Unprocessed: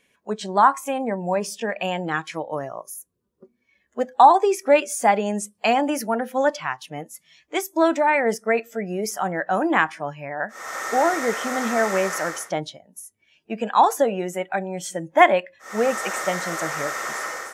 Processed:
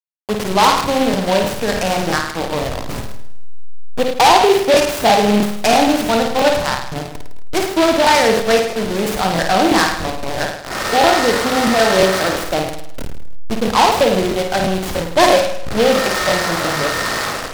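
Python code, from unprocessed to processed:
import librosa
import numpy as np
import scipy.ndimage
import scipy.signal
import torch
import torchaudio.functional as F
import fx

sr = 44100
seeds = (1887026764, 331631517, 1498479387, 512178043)

p1 = fx.delta_hold(x, sr, step_db=-26.0)
p2 = fx.high_shelf(p1, sr, hz=7400.0, db=10.5)
p3 = fx.fold_sine(p2, sr, drive_db=12, ceiling_db=-1.0)
p4 = p2 + (p3 * librosa.db_to_amplitude(-10.0))
p5 = fx.air_absorb(p4, sr, metres=110.0)
p6 = p5 + fx.room_flutter(p5, sr, wall_m=9.1, rt60_s=0.73, dry=0)
p7 = fx.buffer_crackle(p6, sr, first_s=0.76, period_s=0.33, block=1024, kind='repeat')
p8 = fx.noise_mod_delay(p7, sr, seeds[0], noise_hz=2700.0, depth_ms=0.067)
y = p8 * librosa.db_to_amplitude(-1.5)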